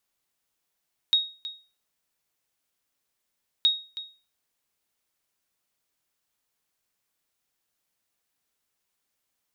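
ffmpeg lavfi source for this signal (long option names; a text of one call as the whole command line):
ffmpeg -f lavfi -i "aevalsrc='0.211*(sin(2*PI*3760*mod(t,2.52))*exp(-6.91*mod(t,2.52)/0.35)+0.178*sin(2*PI*3760*max(mod(t,2.52)-0.32,0))*exp(-6.91*max(mod(t,2.52)-0.32,0)/0.35))':duration=5.04:sample_rate=44100" out.wav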